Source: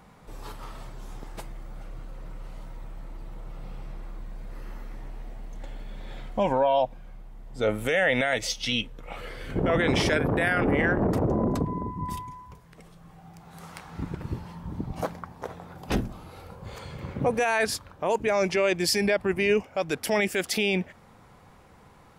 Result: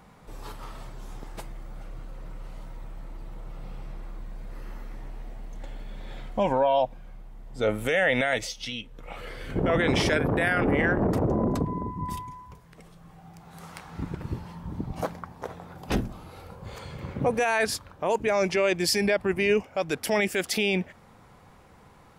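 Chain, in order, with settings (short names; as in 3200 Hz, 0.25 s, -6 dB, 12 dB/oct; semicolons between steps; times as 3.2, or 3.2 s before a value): 8.41–9.27 compressor 3:1, threshold -34 dBFS, peak gain reduction 9 dB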